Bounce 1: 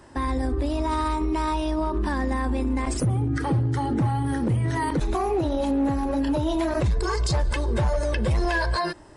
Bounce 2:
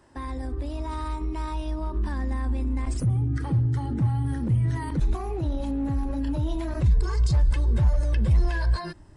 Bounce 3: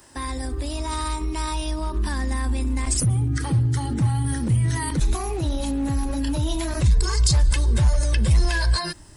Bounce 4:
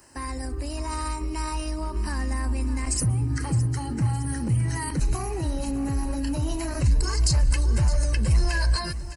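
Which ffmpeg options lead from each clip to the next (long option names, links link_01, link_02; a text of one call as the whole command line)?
ffmpeg -i in.wav -af "asubboost=boost=4:cutoff=220,volume=-8.5dB" out.wav
ffmpeg -i in.wav -af "crystalizer=i=6:c=0,volume=2.5dB" out.wav
ffmpeg -i in.wav -af "asuperstop=centerf=3500:order=4:qfactor=3.9,aecho=1:1:613|1226|1839|2452|3065:0.188|0.0998|0.0529|0.028|0.0149,volume=-3dB" out.wav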